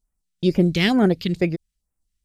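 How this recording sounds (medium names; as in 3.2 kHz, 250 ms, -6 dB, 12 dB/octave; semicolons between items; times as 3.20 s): phasing stages 2, 2.2 Hz, lowest notch 670–3900 Hz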